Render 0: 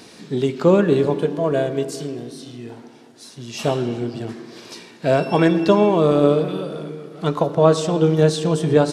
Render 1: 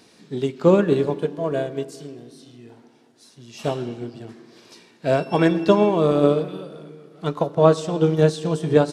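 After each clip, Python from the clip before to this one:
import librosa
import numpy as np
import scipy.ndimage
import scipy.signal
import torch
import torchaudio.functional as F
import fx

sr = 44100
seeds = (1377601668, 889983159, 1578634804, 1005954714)

y = fx.upward_expand(x, sr, threshold_db=-29.0, expansion=1.5)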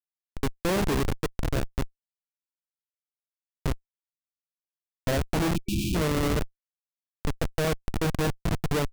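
y = fx.schmitt(x, sr, flips_db=-18.0)
y = fx.spec_erase(y, sr, start_s=5.55, length_s=0.4, low_hz=370.0, high_hz=2300.0)
y = y * 10.0 ** (-2.5 / 20.0)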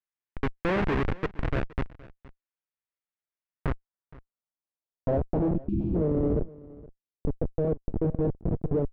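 y = fx.filter_sweep_lowpass(x, sr, from_hz=2100.0, to_hz=470.0, start_s=3.38, end_s=5.69, q=1.4)
y = y + 10.0 ** (-21.0 / 20.0) * np.pad(y, (int(468 * sr / 1000.0), 0))[:len(y)]
y = y * 10.0 ** (-1.0 / 20.0)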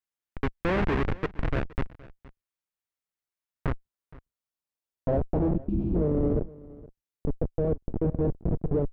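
y = fx.octave_divider(x, sr, octaves=2, level_db=-6.0)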